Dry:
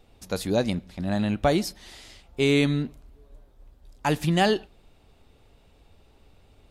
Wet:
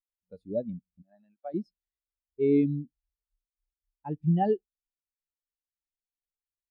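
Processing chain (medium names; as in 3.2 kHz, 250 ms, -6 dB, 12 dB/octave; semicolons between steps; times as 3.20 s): 1.02–1.54 s: band-pass filter 1.8 kHz, Q 0.59; spectral contrast expander 2.5:1; trim -5 dB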